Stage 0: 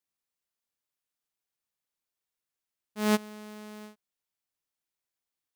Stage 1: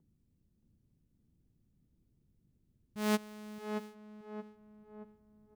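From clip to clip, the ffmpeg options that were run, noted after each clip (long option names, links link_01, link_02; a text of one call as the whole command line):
ffmpeg -i in.wav -filter_complex "[0:a]acrossover=split=230|500|5500[link_01][link_02][link_03][link_04];[link_01]acompressor=mode=upward:threshold=-35dB:ratio=2.5[link_05];[link_05][link_02][link_03][link_04]amix=inputs=4:normalize=0,asplit=2[link_06][link_07];[link_07]adelay=625,lowpass=frequency=1300:poles=1,volume=-5dB,asplit=2[link_08][link_09];[link_09]adelay=625,lowpass=frequency=1300:poles=1,volume=0.51,asplit=2[link_10][link_11];[link_11]adelay=625,lowpass=frequency=1300:poles=1,volume=0.51,asplit=2[link_12][link_13];[link_13]adelay=625,lowpass=frequency=1300:poles=1,volume=0.51,asplit=2[link_14][link_15];[link_15]adelay=625,lowpass=frequency=1300:poles=1,volume=0.51,asplit=2[link_16][link_17];[link_17]adelay=625,lowpass=frequency=1300:poles=1,volume=0.51[link_18];[link_06][link_08][link_10][link_12][link_14][link_16][link_18]amix=inputs=7:normalize=0,volume=-5.5dB" out.wav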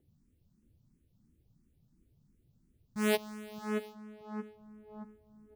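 ffmpeg -i in.wav -filter_complex "[0:a]asplit=2[link_01][link_02];[link_02]afreqshift=2.9[link_03];[link_01][link_03]amix=inputs=2:normalize=1,volume=6.5dB" out.wav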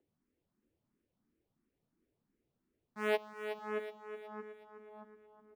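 ffmpeg -i in.wav -filter_complex "[0:a]acrossover=split=320 2800:gain=0.0794 1 0.141[link_01][link_02][link_03];[link_01][link_02][link_03]amix=inputs=3:normalize=0,asplit=2[link_04][link_05];[link_05]aecho=0:1:370|740|1110|1480|1850:0.335|0.147|0.0648|0.0285|0.0126[link_06];[link_04][link_06]amix=inputs=2:normalize=0" out.wav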